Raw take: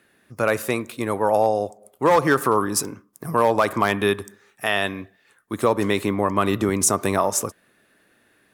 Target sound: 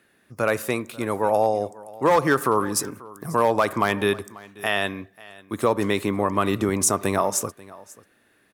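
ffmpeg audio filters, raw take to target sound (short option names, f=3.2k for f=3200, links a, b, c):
-af "aecho=1:1:539:0.0891,volume=-1.5dB"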